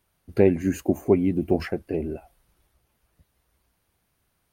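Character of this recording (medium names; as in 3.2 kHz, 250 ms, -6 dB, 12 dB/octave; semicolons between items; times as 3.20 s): noise floor -73 dBFS; spectral tilt -7.0 dB/octave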